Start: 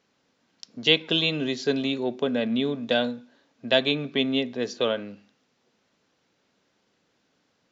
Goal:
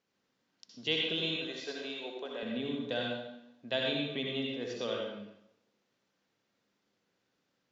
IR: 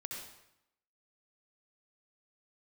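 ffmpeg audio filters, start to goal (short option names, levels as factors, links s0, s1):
-filter_complex "[0:a]asettb=1/sr,asplit=3[s0][s1][s2];[s0]atrim=end=1.364[s3];[s1]atrim=start=1.36:end=2.43,asetpts=PTS-STARTPTS,afade=t=in:d=0.004:c=qsin,afade=t=out:st=1.066:d=0.004:c=qsin,highpass=500[s4];[s2]atrim=start=2.426[s5];[s3][s4]acrossfade=d=0.004:c1=hsin:c2=qsin[s6];[s6][s5]acrossfade=d=0.004:c1=qsin:c2=hsin[s7];[1:a]atrim=start_sample=2205[s8];[s7][s8]afir=irnorm=-1:irlink=0,volume=0.398"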